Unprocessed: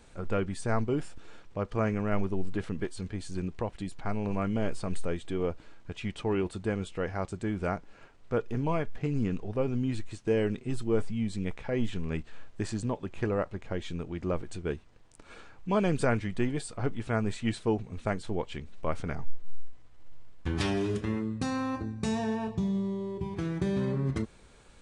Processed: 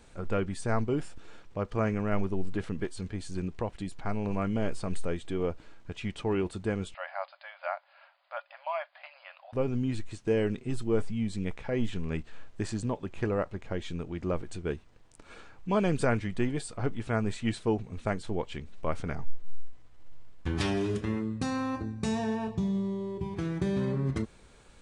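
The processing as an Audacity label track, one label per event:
6.940000	9.530000	brick-wall FIR band-pass 540–5000 Hz

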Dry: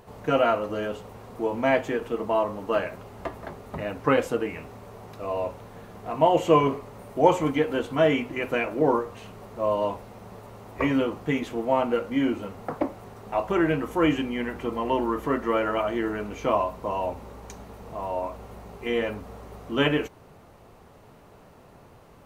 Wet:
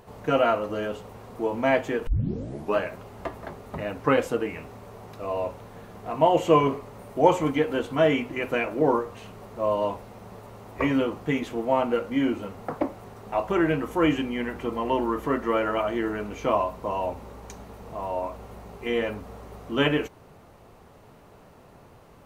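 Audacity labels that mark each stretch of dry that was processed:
2.070000	2.070000	tape start 0.70 s

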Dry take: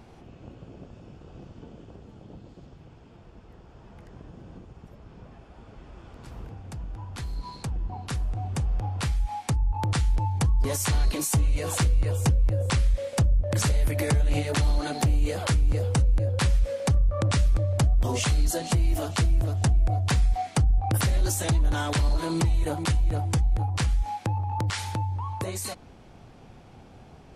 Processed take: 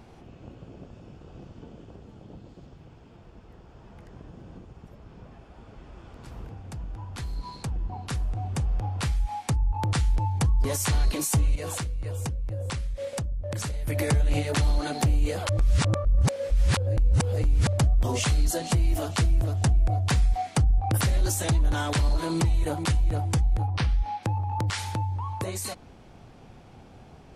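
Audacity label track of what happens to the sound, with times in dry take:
11.550000	13.880000	compression, threshold -28 dBFS
15.490000	17.670000	reverse
23.670000	24.230000	Savitzky-Golay filter over 15 samples

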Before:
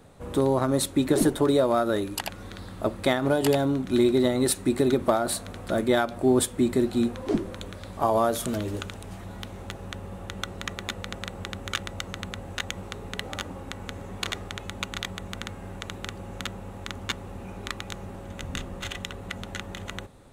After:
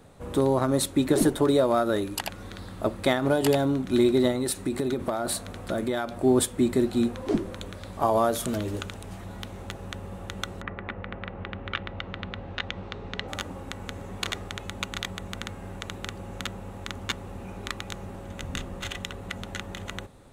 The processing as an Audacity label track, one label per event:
4.310000	6.230000	compression 5:1, threshold -23 dBFS
10.600000	13.270000	low-pass 2.1 kHz -> 5.4 kHz 24 dB/octave

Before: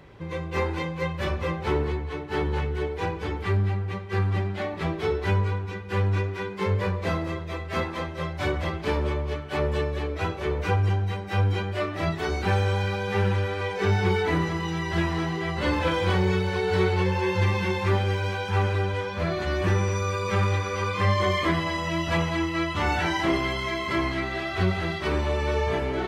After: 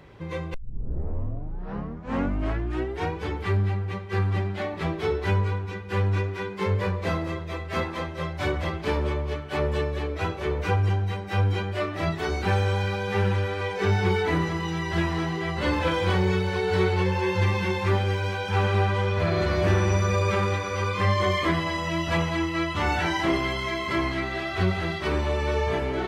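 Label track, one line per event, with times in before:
0.540000	0.540000	tape start 2.64 s
18.390000	20.200000	reverb throw, RT60 2.5 s, DRR 1 dB

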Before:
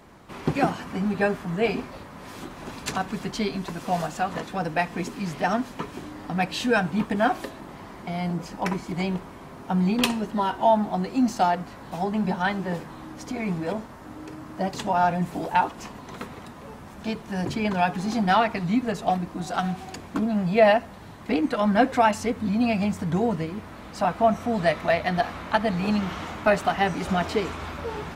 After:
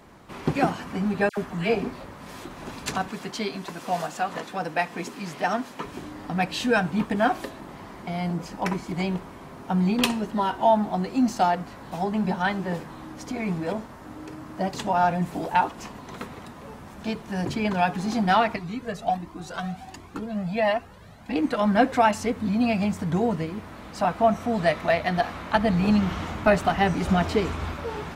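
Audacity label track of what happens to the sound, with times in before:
1.290000	2.450000	phase dispersion lows, late by 84 ms, half as late at 1.5 kHz
3.090000	5.850000	high-pass 290 Hz 6 dB/octave
18.560000	21.360000	Shepard-style flanger rising 1.4 Hz
25.550000	27.740000	bass shelf 190 Hz +8.5 dB

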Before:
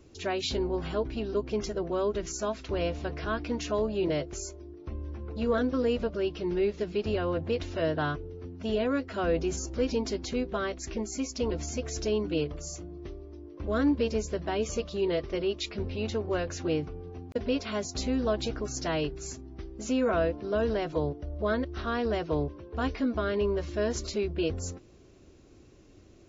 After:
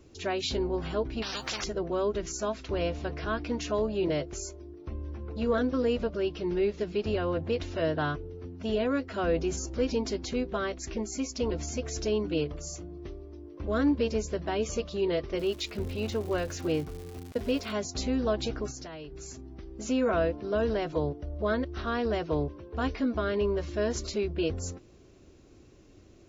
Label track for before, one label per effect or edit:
1.220000	1.640000	spectrum-flattening compressor 10:1
15.370000	17.710000	crackle 360 per s -39 dBFS
18.700000	19.710000	compression 10:1, threshold -38 dBFS

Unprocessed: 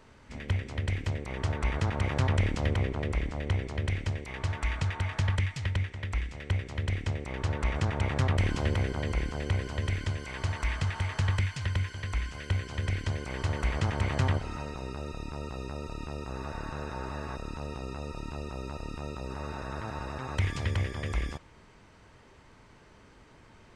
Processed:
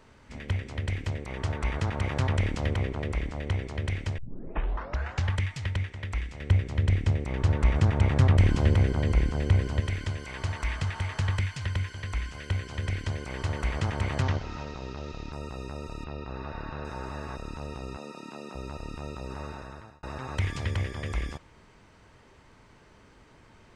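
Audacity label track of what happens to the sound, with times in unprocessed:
4.180000	4.180000	tape start 1.14 s
6.400000	9.800000	bass shelf 380 Hz +7.5 dB
14.220000	15.330000	CVSD coder 32 kbps
16.040000	16.850000	low-pass 4.6 kHz 24 dB/octave
17.970000	18.550000	Chebyshev high-pass 200 Hz, order 3
19.400000	20.030000	fade out

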